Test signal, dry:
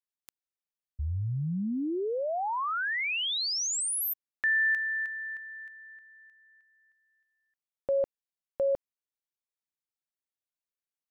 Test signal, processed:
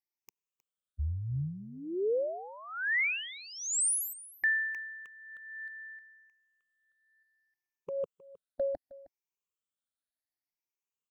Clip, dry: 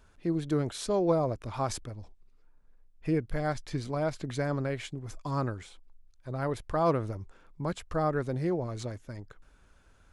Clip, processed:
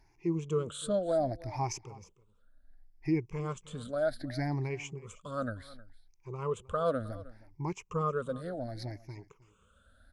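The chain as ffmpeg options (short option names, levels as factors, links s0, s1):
-af "afftfilt=real='re*pow(10,22/40*sin(2*PI*(0.75*log(max(b,1)*sr/1024/100)/log(2)-(0.67)*(pts-256)/sr)))':imag='im*pow(10,22/40*sin(2*PI*(0.75*log(max(b,1)*sr/1024/100)/log(2)-(0.67)*(pts-256)/sr)))':win_size=1024:overlap=0.75,aecho=1:1:313:0.106,volume=0.398"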